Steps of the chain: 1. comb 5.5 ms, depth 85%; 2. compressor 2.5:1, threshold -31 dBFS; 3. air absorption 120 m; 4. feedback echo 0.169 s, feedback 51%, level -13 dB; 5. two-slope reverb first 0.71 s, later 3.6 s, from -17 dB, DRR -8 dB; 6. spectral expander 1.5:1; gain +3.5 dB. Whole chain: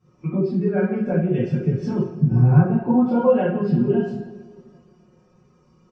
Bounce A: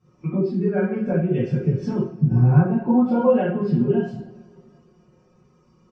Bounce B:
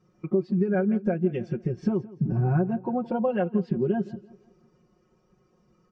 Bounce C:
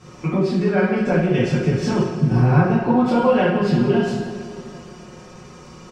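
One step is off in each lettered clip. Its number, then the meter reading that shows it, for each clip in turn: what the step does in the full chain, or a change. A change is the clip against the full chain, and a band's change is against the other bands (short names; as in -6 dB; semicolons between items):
4, momentary loudness spread change -1 LU; 5, loudness change -6.5 LU; 6, 2 kHz band +8.0 dB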